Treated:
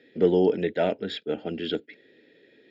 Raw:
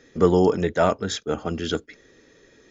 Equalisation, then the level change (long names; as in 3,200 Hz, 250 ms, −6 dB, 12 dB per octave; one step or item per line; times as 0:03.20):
band-pass filter 230–4,900 Hz
phaser with its sweep stopped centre 2,700 Hz, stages 4
0.0 dB